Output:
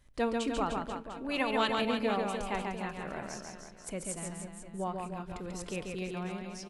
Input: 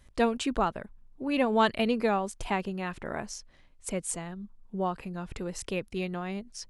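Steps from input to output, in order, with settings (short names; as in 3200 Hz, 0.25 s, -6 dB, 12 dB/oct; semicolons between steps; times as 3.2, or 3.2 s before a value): 1.28–1.75 spectral limiter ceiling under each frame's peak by 13 dB; reverse bouncing-ball echo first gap 0.14 s, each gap 1.15×, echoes 5; reverb RT60 0.65 s, pre-delay 7 ms, DRR 14.5 dB; gain -6 dB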